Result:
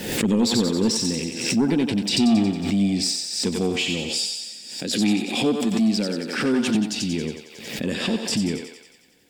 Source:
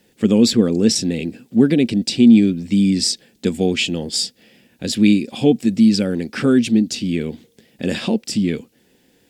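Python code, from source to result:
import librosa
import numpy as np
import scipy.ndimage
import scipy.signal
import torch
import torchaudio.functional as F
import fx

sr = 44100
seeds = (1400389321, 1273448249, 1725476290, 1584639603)

y = fx.highpass(x, sr, hz=180.0, slope=12, at=(4.19, 6.75))
y = 10.0 ** (-9.0 / 20.0) * np.tanh(y / 10.0 ** (-9.0 / 20.0))
y = fx.echo_thinned(y, sr, ms=91, feedback_pct=65, hz=540.0, wet_db=-4.0)
y = fx.pre_swell(y, sr, db_per_s=61.0)
y = y * librosa.db_to_amplitude(-4.5)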